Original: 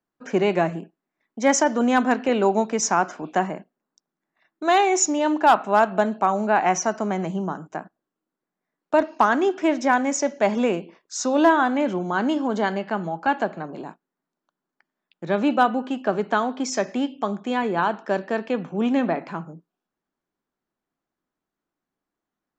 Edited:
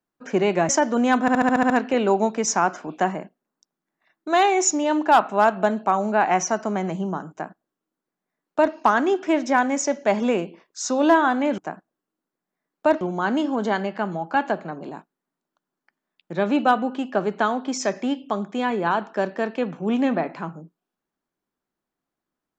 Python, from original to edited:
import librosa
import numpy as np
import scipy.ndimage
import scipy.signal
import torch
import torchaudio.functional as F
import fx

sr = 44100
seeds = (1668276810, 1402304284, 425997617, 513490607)

y = fx.edit(x, sr, fx.cut(start_s=0.69, length_s=0.84),
    fx.stutter(start_s=2.05, slice_s=0.07, count=8),
    fx.duplicate(start_s=7.66, length_s=1.43, to_s=11.93), tone=tone)